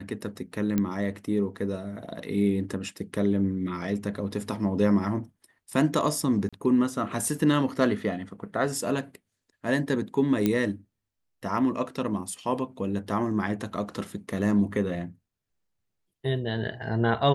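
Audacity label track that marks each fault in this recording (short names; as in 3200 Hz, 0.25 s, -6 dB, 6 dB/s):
0.780000	0.780000	pop -13 dBFS
6.490000	6.530000	gap 36 ms
10.460000	10.460000	pop -11 dBFS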